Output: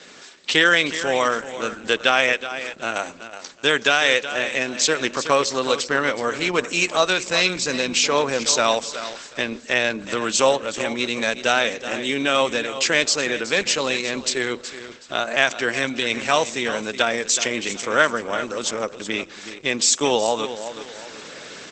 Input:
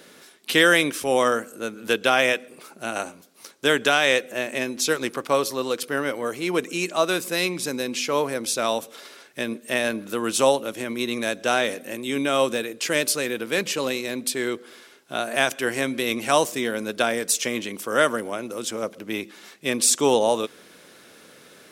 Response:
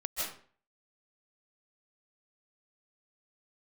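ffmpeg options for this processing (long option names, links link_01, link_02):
-filter_complex "[0:a]asplit=2[link_01][link_02];[link_02]acompressor=threshold=-27dB:ratio=20,volume=-0.5dB[link_03];[link_01][link_03]amix=inputs=2:normalize=0,tiltshelf=frequency=840:gain=-3.5,aecho=1:1:372|744|1116:0.251|0.0678|0.0183,dynaudnorm=framelen=130:gausssize=13:maxgain=6dB,adynamicequalizer=threshold=0.01:dfrequency=340:dqfactor=6:tfrequency=340:tqfactor=6:attack=5:release=100:ratio=0.375:range=3:mode=cutabove:tftype=bell" -ar 48000 -c:a libopus -b:a 12k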